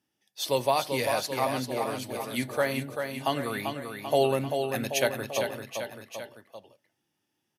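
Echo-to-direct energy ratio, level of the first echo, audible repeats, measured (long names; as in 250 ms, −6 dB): −4.5 dB, −6.0 dB, 3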